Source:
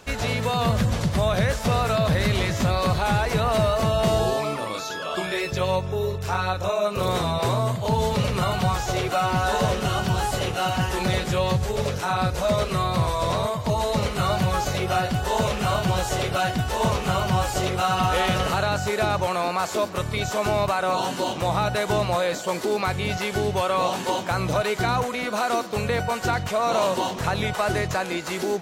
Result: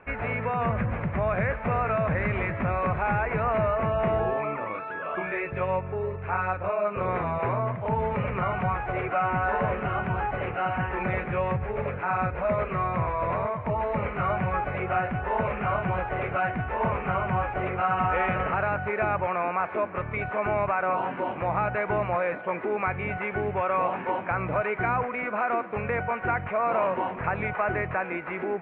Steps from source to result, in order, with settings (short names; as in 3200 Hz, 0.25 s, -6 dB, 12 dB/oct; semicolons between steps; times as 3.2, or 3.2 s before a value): Chebyshev low-pass 2400 Hz, order 5; low shelf 470 Hz -6.5 dB